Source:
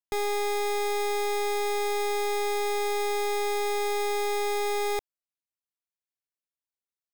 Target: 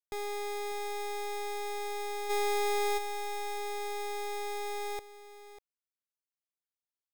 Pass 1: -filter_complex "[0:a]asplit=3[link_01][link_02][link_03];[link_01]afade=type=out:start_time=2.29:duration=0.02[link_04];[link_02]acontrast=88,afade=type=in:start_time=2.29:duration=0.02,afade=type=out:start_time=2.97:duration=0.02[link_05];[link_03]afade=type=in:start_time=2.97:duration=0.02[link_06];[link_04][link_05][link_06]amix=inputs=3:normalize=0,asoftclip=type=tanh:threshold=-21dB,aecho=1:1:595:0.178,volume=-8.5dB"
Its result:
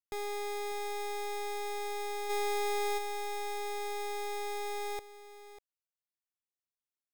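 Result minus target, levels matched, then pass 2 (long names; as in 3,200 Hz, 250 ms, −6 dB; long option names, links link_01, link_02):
soft clipping: distortion +14 dB
-filter_complex "[0:a]asplit=3[link_01][link_02][link_03];[link_01]afade=type=out:start_time=2.29:duration=0.02[link_04];[link_02]acontrast=88,afade=type=in:start_time=2.29:duration=0.02,afade=type=out:start_time=2.97:duration=0.02[link_05];[link_03]afade=type=in:start_time=2.97:duration=0.02[link_06];[link_04][link_05][link_06]amix=inputs=3:normalize=0,asoftclip=type=tanh:threshold=-13dB,aecho=1:1:595:0.178,volume=-8.5dB"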